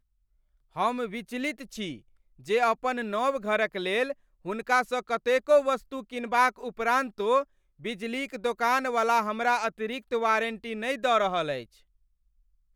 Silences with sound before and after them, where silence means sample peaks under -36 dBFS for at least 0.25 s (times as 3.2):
1.96–2.48
4.12–4.46
7.43–7.85